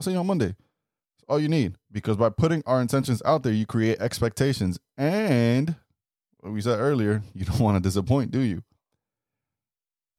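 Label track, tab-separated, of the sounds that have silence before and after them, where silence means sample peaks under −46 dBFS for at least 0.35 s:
1.290000	5.760000	sound
6.430000	8.610000	sound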